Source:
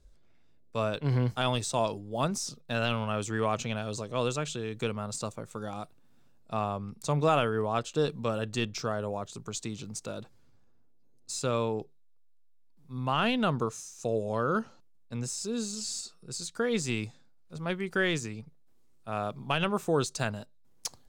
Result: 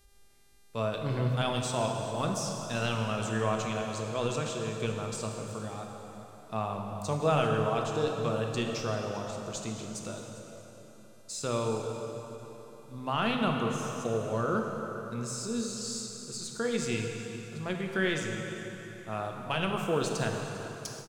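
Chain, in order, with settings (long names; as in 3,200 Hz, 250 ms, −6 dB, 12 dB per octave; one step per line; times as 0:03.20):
dense smooth reverb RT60 3.8 s, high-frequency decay 0.75×, DRR 1.5 dB
hum with harmonics 400 Hz, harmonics 31, −65 dBFS −1 dB per octave
on a send: single-tap delay 398 ms −17.5 dB
on the sum: every ending faded ahead of time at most 150 dB per second
level −3 dB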